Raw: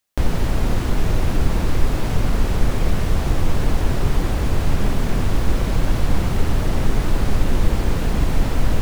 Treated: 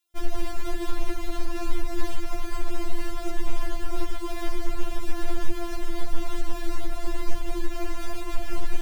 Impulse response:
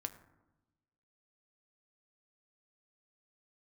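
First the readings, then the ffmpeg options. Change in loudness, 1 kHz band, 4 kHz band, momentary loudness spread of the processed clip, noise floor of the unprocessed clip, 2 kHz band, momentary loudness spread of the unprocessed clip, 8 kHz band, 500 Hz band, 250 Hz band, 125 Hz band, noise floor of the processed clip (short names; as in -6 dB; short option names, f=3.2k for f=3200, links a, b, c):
-12.5 dB, -7.5 dB, -8.0 dB, 2 LU, -22 dBFS, -8.5 dB, 1 LU, -8.0 dB, -8.0 dB, -10.0 dB, -18.0 dB, -30 dBFS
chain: -af "alimiter=limit=-14dB:level=0:latency=1:release=283,afftfilt=real='re*4*eq(mod(b,16),0)':imag='im*4*eq(mod(b,16),0)':win_size=2048:overlap=0.75"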